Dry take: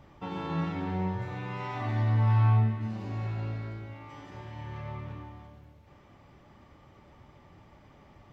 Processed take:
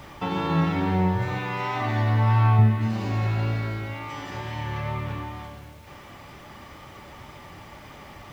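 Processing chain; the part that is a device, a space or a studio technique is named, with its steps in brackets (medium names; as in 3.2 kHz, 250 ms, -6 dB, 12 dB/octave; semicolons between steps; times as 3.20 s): noise-reduction cassette on a plain deck (tape noise reduction on one side only encoder only; wow and flutter 19 cents; white noise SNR 40 dB); 1.38–2.59 s: bass shelf 200 Hz -7 dB; trim +8.5 dB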